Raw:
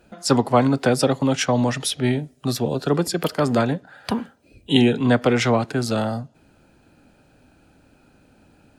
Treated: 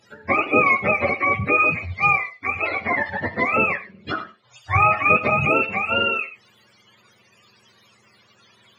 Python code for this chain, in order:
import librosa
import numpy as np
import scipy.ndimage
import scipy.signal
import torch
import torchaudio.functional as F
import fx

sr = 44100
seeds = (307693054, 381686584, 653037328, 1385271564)

y = fx.octave_mirror(x, sr, pivot_hz=550.0)
y = fx.weighting(y, sr, curve='D')
y = fx.rev_gated(y, sr, seeds[0], gate_ms=140, shape='flat', drr_db=11.5)